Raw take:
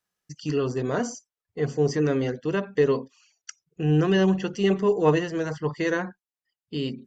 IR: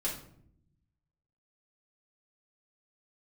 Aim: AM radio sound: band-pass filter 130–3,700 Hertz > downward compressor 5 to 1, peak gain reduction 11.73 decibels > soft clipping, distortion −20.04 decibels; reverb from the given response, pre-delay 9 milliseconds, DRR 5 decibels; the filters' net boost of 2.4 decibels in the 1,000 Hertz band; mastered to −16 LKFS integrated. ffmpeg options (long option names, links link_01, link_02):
-filter_complex "[0:a]equalizer=frequency=1000:width_type=o:gain=3,asplit=2[link_01][link_02];[1:a]atrim=start_sample=2205,adelay=9[link_03];[link_02][link_03]afir=irnorm=-1:irlink=0,volume=-9dB[link_04];[link_01][link_04]amix=inputs=2:normalize=0,highpass=130,lowpass=3700,acompressor=threshold=-24dB:ratio=5,asoftclip=threshold=-19.5dB,volume=14.5dB"